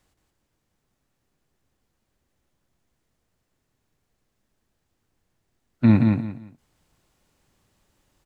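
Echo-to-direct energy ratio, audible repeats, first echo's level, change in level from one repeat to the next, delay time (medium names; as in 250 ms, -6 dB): -3.5 dB, 3, -4.0 dB, -12.0 dB, 174 ms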